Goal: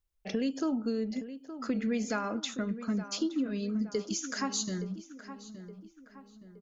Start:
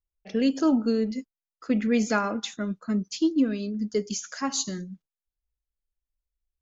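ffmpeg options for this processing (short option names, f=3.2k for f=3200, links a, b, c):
-filter_complex "[0:a]acompressor=threshold=-38dB:ratio=3,asplit=2[a][b];[b]adelay=869,lowpass=f=2.4k:p=1,volume=-12dB,asplit=2[c][d];[d]adelay=869,lowpass=f=2.4k:p=1,volume=0.47,asplit=2[e][f];[f]adelay=869,lowpass=f=2.4k:p=1,volume=0.47,asplit=2[g][h];[h]adelay=869,lowpass=f=2.4k:p=1,volume=0.47,asplit=2[i][j];[j]adelay=869,lowpass=f=2.4k:p=1,volume=0.47[k];[a][c][e][g][i][k]amix=inputs=6:normalize=0,volume=5dB"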